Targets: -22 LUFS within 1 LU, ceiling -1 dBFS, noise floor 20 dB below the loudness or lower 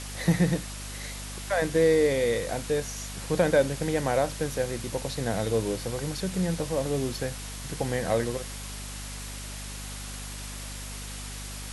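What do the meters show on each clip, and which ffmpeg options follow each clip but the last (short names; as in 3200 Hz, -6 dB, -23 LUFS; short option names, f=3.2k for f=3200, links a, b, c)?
hum 50 Hz; harmonics up to 250 Hz; hum level -37 dBFS; noise floor -38 dBFS; noise floor target -49 dBFS; loudness -29.0 LUFS; peak -10.0 dBFS; loudness target -22.0 LUFS
-> -af "bandreject=f=50:t=h:w=4,bandreject=f=100:t=h:w=4,bandreject=f=150:t=h:w=4,bandreject=f=200:t=h:w=4,bandreject=f=250:t=h:w=4"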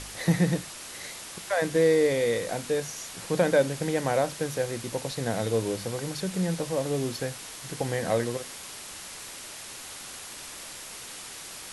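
hum none; noise floor -42 dBFS; noise floor target -49 dBFS
-> -af "afftdn=nr=7:nf=-42"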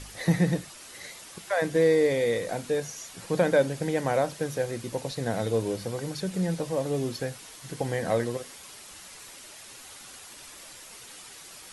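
noise floor -47 dBFS; noise floor target -48 dBFS
-> -af "afftdn=nr=6:nf=-47"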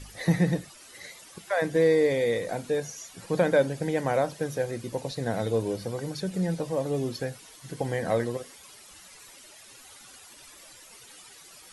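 noise floor -51 dBFS; loudness -28.0 LUFS; peak -11.0 dBFS; loudness target -22.0 LUFS
-> -af "volume=6dB"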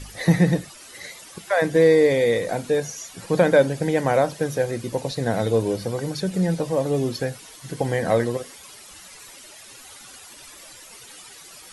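loudness -22.0 LUFS; peak -5.0 dBFS; noise floor -45 dBFS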